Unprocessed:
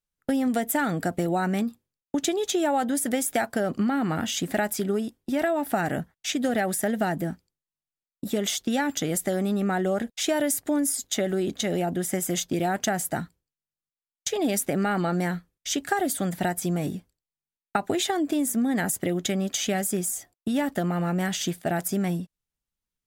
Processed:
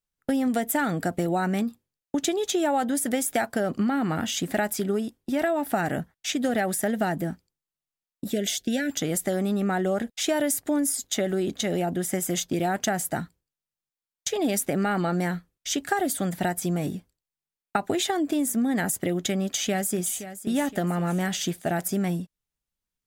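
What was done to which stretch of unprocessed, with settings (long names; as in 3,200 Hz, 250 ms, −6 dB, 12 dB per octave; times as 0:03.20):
0:08.32–0:08.91: elliptic band-stop filter 730–1,500 Hz
0:19.43–0:20.14: delay throw 520 ms, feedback 45%, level −12.5 dB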